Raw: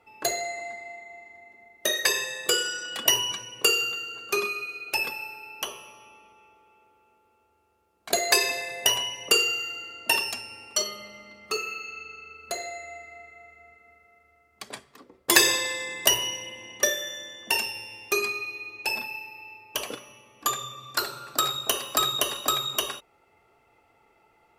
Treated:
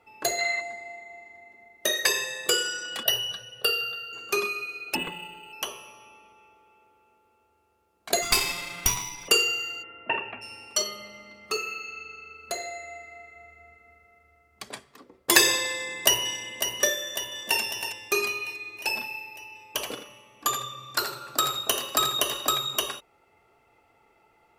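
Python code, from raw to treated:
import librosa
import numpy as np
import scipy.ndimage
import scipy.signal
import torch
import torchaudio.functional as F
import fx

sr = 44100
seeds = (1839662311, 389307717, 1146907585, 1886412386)

y = fx.spec_box(x, sr, start_s=0.39, length_s=0.22, low_hz=980.0, high_hz=4600.0, gain_db=10)
y = fx.fixed_phaser(y, sr, hz=1500.0, stages=8, at=(3.03, 4.13))
y = fx.resample_linear(y, sr, factor=8, at=(4.95, 5.53))
y = fx.lower_of_two(y, sr, delay_ms=0.86, at=(8.21, 9.27), fade=0.02)
y = fx.steep_lowpass(y, sr, hz=2600.0, slope=48, at=(9.82, 10.41), fade=0.02)
y = fx.low_shelf(y, sr, hz=90.0, db=10.5, at=(13.36, 14.69))
y = fx.echo_throw(y, sr, start_s=15.7, length_s=0.63, ms=550, feedback_pct=60, wet_db=-8.0)
y = fx.echo_throw(y, sr, start_s=16.99, length_s=0.61, ms=320, feedback_pct=45, wet_db=-8.5)
y = fx.echo_single(y, sr, ms=83, db=-10.0, at=(19.52, 22.5))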